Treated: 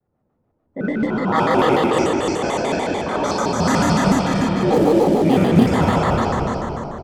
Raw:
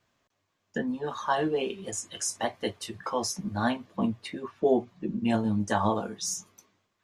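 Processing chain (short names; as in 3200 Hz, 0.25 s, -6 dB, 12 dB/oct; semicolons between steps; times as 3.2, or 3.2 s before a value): ending faded out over 1.60 s; Schroeder reverb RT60 3.7 s, combs from 31 ms, DRR -10 dB; in parallel at -4.5 dB: short-mantissa float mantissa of 2-bit; on the sum: low-pass opened by the level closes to 530 Hz, open at -9 dBFS; on a send: frequency-shifting echo 0.251 s, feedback 38%, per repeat -32 Hz, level -3.5 dB; on the sum: shaped vibrato square 6.8 Hz, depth 250 cents; gain -3 dB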